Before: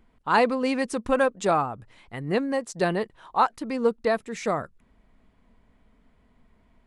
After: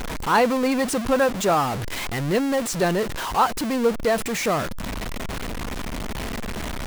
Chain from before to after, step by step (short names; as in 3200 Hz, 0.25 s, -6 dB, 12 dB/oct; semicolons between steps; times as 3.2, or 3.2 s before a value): zero-crossing step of -23 dBFS